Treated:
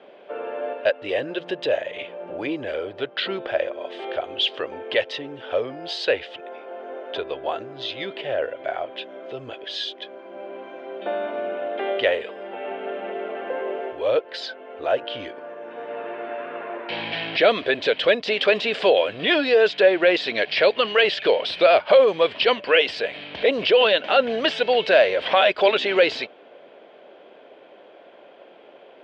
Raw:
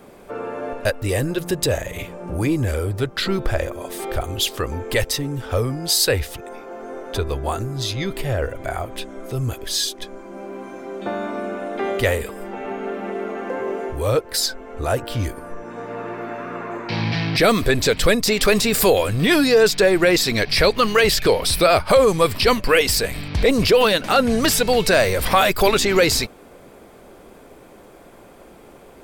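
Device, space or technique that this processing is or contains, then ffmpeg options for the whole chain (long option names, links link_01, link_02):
phone earpiece: -af "highpass=460,equalizer=frequency=600:width_type=q:width=4:gain=5,equalizer=frequency=870:width_type=q:width=4:gain=-3,equalizer=frequency=1200:width_type=q:width=4:gain=-8,equalizer=frequency=2100:width_type=q:width=4:gain=-3,equalizer=frequency=3100:width_type=q:width=4:gain=7,lowpass=frequency=3300:width=0.5412,lowpass=frequency=3300:width=1.3066"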